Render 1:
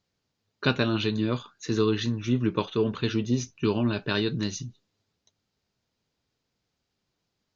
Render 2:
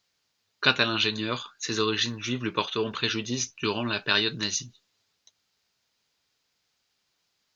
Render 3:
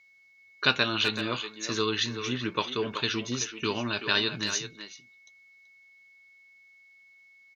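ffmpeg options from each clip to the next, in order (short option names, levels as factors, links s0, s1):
-af "tiltshelf=f=640:g=-8.5"
-filter_complex "[0:a]aeval=exprs='val(0)+0.00178*sin(2*PI*2200*n/s)':c=same,asplit=2[s0][s1];[s1]adelay=380,highpass=300,lowpass=3400,asoftclip=type=hard:threshold=0.211,volume=0.398[s2];[s0][s2]amix=inputs=2:normalize=0,volume=0.794"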